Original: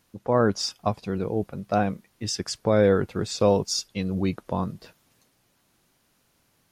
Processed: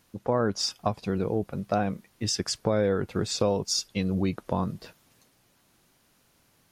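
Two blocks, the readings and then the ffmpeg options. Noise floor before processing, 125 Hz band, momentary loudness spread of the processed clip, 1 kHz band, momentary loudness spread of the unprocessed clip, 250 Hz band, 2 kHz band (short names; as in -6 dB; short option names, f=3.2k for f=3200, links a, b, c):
-68 dBFS, -2.0 dB, 6 LU, -3.0 dB, 9 LU, -2.5 dB, -3.5 dB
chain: -af "acompressor=threshold=-25dB:ratio=3,volume=2dB"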